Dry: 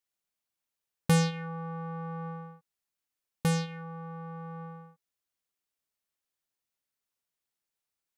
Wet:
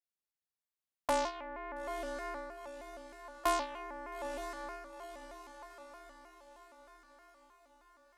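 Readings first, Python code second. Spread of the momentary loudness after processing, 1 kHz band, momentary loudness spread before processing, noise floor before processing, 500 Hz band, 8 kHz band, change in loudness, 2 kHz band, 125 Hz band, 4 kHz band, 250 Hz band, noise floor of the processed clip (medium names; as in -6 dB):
24 LU, +3.0 dB, 18 LU, under -85 dBFS, +0.5 dB, -5.5 dB, -6.5 dB, -2.0 dB, under -30 dB, -5.0 dB, -13.5 dB, under -85 dBFS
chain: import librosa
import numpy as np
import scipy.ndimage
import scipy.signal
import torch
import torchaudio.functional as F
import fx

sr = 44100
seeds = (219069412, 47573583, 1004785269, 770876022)

y = x * np.sin(2.0 * np.pi * 790.0 * np.arange(len(x)) / sr)
y = fx.rider(y, sr, range_db=4, speed_s=2.0)
y = fx.echo_diffused(y, sr, ms=910, feedback_pct=53, wet_db=-9.5)
y = fx.vibrato_shape(y, sr, shape='square', rate_hz=3.2, depth_cents=160.0)
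y = y * 10.0 ** (-4.0 / 20.0)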